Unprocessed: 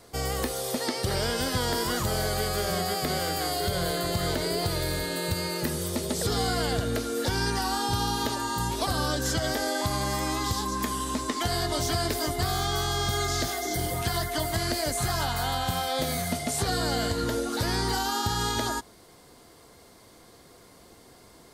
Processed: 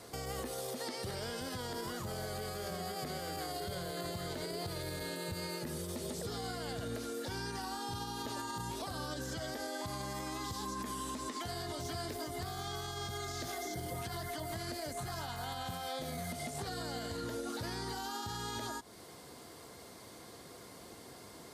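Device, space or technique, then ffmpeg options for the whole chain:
podcast mastering chain: -af "highpass=77,deesser=0.65,acompressor=threshold=-38dB:ratio=2.5,alimiter=level_in=8dB:limit=-24dB:level=0:latency=1:release=85,volume=-8dB,volume=1.5dB" -ar 32000 -c:a libmp3lame -b:a 96k

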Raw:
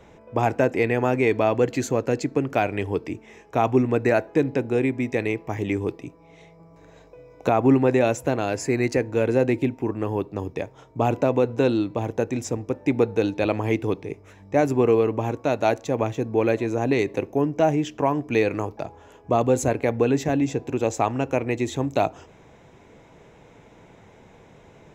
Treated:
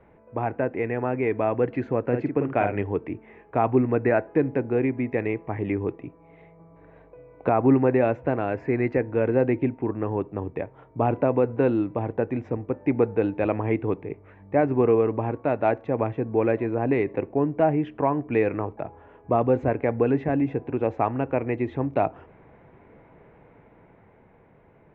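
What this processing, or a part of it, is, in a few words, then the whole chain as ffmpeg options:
action camera in a waterproof case: -filter_complex "[0:a]asettb=1/sr,asplit=3[link_01][link_02][link_03];[link_01]atrim=end=2.054[link_04];[link_02]atrim=start=2.05:end=2.82,asetpts=PTS-STARTPTS,afade=type=in:duration=0.004:curve=qsin,afade=type=out:start_time=0.766:duration=0.004:curve=qsin,asplit=2[link_05][link_06];[link_06]adelay=49,volume=-5.5dB[link_07];[link_05][link_07]amix=inputs=2:normalize=0,atrim=end_sample=33957[link_08];[link_03]atrim=start=2.816[link_09];[link_04][link_08]acrossfade=duration=0.004:curve1=hsin:curve2=qsin[link_10];[link_10][link_09]acrossfade=duration=0.004:curve1=qsin:curve2=hsin,lowpass=frequency=2200:width=0.5412,lowpass=frequency=2200:width=1.3066,dynaudnorm=framelen=180:gausssize=17:maxgain=5.5dB,volume=-5.5dB" -ar 48000 -c:a aac -b:a 128k

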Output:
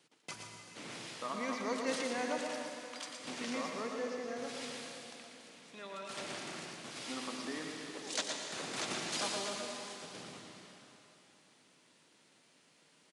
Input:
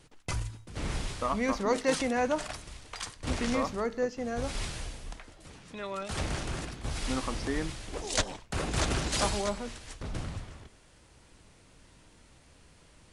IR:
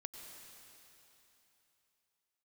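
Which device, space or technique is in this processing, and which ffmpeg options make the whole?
PA in a hall: -filter_complex "[0:a]highpass=frequency=180:width=0.5412,highpass=frequency=180:width=1.3066,equalizer=frequency=3700:width_type=o:width=2.3:gain=5,aecho=1:1:117:0.473[link_01];[1:a]atrim=start_sample=2205[link_02];[link_01][link_02]afir=irnorm=-1:irlink=0,volume=-5.5dB"

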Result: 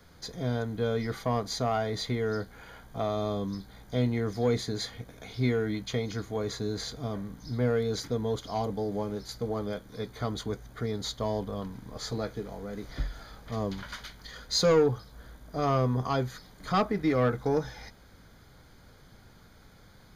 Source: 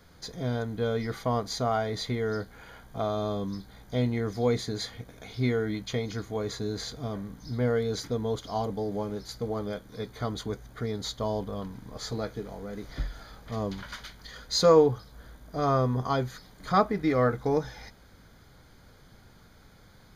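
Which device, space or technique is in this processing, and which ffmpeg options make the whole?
one-band saturation: -filter_complex "[0:a]acrossover=split=300|3700[link_01][link_02][link_03];[link_02]asoftclip=type=tanh:threshold=-20dB[link_04];[link_01][link_04][link_03]amix=inputs=3:normalize=0"

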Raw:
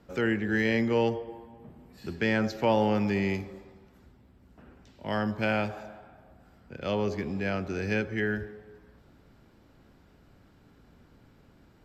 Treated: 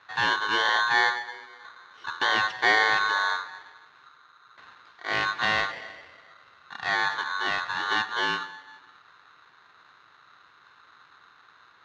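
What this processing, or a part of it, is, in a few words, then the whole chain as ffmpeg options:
ring modulator pedal into a guitar cabinet: -filter_complex "[0:a]aeval=exprs='val(0)*sgn(sin(2*PI*1300*n/s))':channel_layout=same,highpass=95,equalizer=frequency=220:width_type=q:width=4:gain=-6,equalizer=frequency=590:width_type=q:width=4:gain=-3,equalizer=frequency=1900:width_type=q:width=4:gain=4,lowpass=frequency=4500:width=0.5412,lowpass=frequency=4500:width=1.3066,asettb=1/sr,asplit=3[link_01][link_02][link_03];[link_01]atrim=end=3.104[link_04];[link_02]atrim=start=3.1:end=3.59,asetpts=PTS-STARTPTS,afade=type=in:duration=0.004:curve=qsin,afade=type=out:start_time=0.486:duration=0.004:curve=qsin,bandreject=frequency=3200:width=7.1[link_05];[link_03]atrim=start=3.586[link_06];[link_04][link_05]acrossfade=duration=0.004:curve1=hsin:curve2=qsin[link_07];[link_07][link_06]acrossfade=duration=0.004:curve1=qsin:curve2=hsin,volume=2dB"

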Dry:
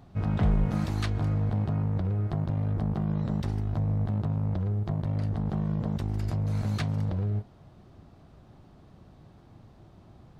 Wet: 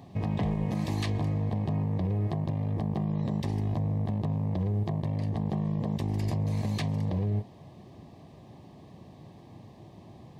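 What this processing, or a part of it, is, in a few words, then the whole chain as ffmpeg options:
PA system with an anti-feedback notch: -af "highpass=110,asuperstop=centerf=1400:order=4:qfactor=2.7,alimiter=level_in=2dB:limit=-24dB:level=0:latency=1:release=80,volume=-2dB,volume=5.5dB"

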